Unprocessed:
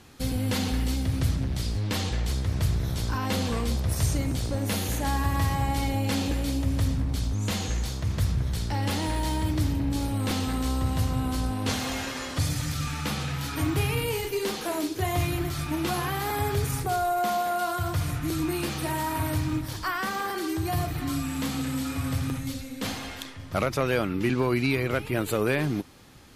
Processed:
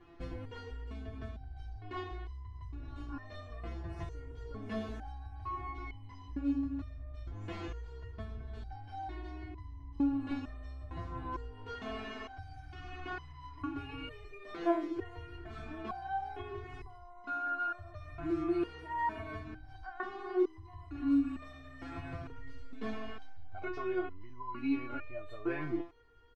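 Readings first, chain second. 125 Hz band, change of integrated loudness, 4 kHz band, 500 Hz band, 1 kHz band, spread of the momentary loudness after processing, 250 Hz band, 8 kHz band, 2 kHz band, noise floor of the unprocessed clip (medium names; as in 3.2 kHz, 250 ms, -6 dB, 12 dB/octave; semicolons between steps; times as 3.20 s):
-19.0 dB, -11.5 dB, -21.0 dB, -10.0 dB, -10.0 dB, 15 LU, -8.0 dB, under -35 dB, -11.5 dB, -37 dBFS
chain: low-pass 1.7 kHz 12 dB/octave; peaking EQ 64 Hz +4 dB 2.3 oct; comb 2.8 ms, depth 78%; compression 3:1, threshold -25 dBFS, peak gain reduction 8.5 dB; resonator arpeggio 2.2 Hz 170–1000 Hz; trim +6.5 dB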